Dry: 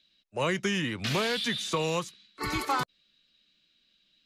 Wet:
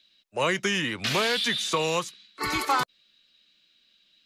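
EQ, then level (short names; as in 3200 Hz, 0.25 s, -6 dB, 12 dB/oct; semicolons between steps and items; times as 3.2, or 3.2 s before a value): low shelf 280 Hz -9 dB; +5.0 dB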